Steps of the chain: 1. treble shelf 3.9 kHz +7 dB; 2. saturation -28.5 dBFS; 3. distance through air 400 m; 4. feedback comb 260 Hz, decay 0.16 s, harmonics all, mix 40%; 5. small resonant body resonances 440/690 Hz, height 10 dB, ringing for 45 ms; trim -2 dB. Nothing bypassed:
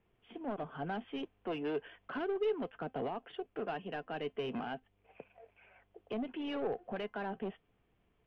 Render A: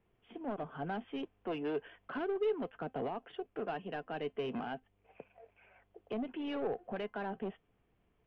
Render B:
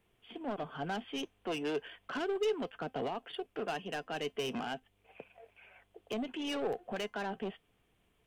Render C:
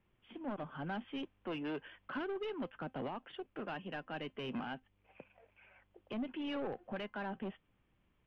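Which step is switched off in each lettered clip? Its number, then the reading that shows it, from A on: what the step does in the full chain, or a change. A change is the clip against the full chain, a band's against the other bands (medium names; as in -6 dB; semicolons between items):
1, 4 kHz band -2.0 dB; 3, 4 kHz band +6.5 dB; 5, 500 Hz band -5.5 dB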